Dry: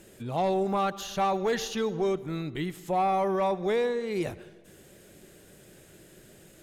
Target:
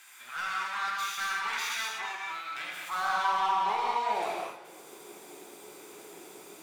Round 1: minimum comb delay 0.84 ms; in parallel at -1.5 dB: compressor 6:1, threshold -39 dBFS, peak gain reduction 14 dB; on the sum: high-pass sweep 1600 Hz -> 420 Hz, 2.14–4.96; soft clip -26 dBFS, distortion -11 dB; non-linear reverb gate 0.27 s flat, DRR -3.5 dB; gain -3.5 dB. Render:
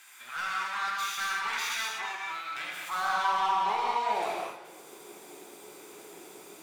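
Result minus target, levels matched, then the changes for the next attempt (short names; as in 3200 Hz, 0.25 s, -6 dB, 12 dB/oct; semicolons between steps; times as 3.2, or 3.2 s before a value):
compressor: peak gain reduction -6.5 dB
change: compressor 6:1, threshold -47 dBFS, peak gain reduction 20.5 dB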